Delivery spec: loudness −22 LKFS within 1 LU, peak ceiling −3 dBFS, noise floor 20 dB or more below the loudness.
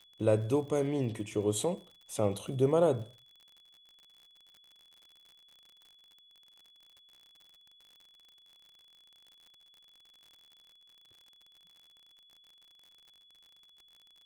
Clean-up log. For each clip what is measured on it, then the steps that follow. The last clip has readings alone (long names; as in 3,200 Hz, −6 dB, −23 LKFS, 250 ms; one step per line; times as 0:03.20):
crackle rate 58 per second; interfering tone 3,400 Hz; level of the tone −59 dBFS; integrated loudness −31.0 LKFS; sample peak −14.0 dBFS; target loudness −22.0 LKFS
→ click removal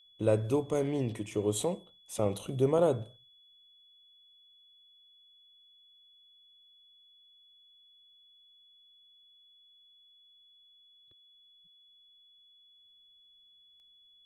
crackle rate 0.14 per second; interfering tone 3,400 Hz; level of the tone −59 dBFS
→ notch filter 3,400 Hz, Q 30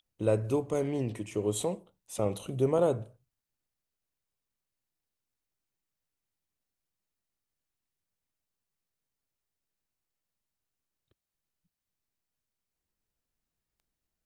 interfering tone none found; integrated loudness −30.5 LKFS; sample peak −14.0 dBFS; target loudness −22.0 LKFS
→ level +8.5 dB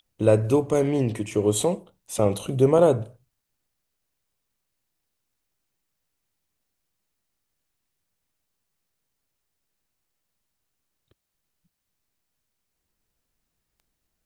integrated loudness −22.0 LKFS; sample peak −5.5 dBFS; background noise floor −80 dBFS